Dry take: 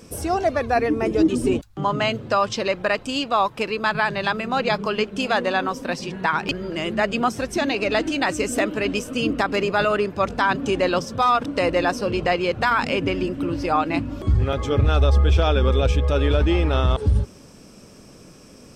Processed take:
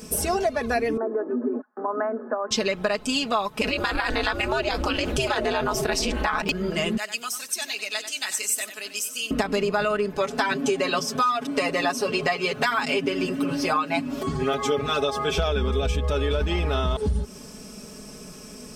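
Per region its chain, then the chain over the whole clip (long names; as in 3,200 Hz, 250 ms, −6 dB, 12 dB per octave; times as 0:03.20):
0:00.97–0:02.51: notch filter 310 Hz, Q 6.4 + downward compressor, threshold −24 dBFS + Chebyshev band-pass filter 240–1,700 Hz, order 5
0:03.61–0:06.42: ring modulation 130 Hz + envelope flattener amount 70%
0:06.97–0:09.31: first difference + single-tap delay 93 ms −11.5 dB
0:10.17–0:15.38: high-pass filter 280 Hz 6 dB per octave + comb filter 7.3 ms, depth 88%
whole clip: high-shelf EQ 6,500 Hz +9 dB; comb filter 4.7 ms, depth 74%; downward compressor, threshold −22 dBFS; level +1.5 dB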